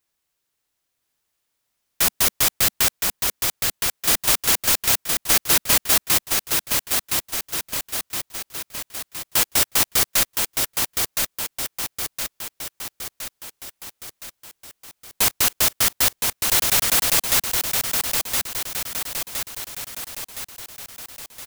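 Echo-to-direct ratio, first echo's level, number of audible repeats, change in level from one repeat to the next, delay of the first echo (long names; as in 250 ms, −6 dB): −2.5 dB, −4.0 dB, 7, −5.0 dB, 1,016 ms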